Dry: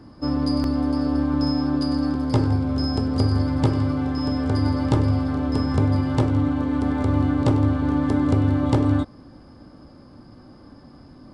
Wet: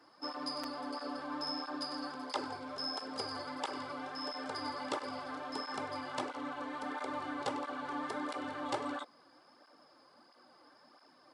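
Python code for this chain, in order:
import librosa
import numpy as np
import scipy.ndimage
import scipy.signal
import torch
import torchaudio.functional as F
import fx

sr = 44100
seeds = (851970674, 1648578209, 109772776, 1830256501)

y = scipy.signal.sosfilt(scipy.signal.butter(2, 740.0, 'highpass', fs=sr, output='sos'), x)
y = fx.flanger_cancel(y, sr, hz=1.5, depth_ms=5.5)
y = y * librosa.db_to_amplitude(-2.5)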